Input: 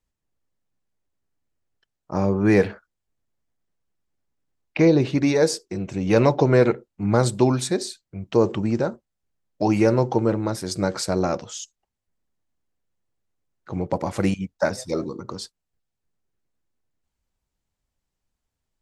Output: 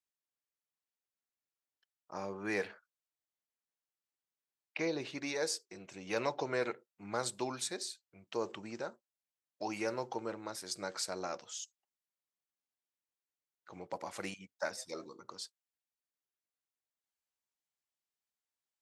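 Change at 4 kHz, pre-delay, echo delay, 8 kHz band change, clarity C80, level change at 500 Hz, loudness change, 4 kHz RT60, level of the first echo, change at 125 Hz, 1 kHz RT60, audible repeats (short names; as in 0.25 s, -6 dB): -9.0 dB, none, none, -8.5 dB, none, -17.5 dB, -17.5 dB, none, none, -28.0 dB, none, none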